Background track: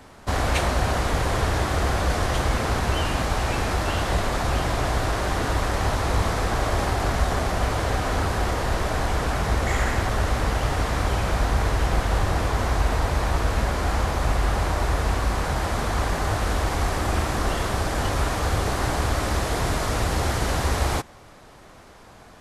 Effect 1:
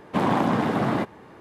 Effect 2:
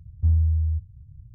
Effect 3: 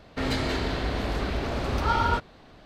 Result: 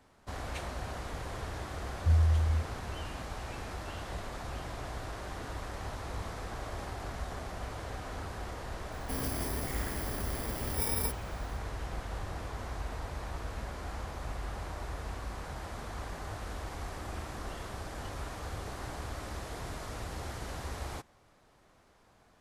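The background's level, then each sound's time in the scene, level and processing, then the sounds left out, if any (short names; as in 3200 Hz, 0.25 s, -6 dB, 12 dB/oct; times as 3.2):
background track -16.5 dB
1.83 add 2 -5 dB
8.92 add 3 -9 dB + FFT order left unsorted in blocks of 32 samples
not used: 1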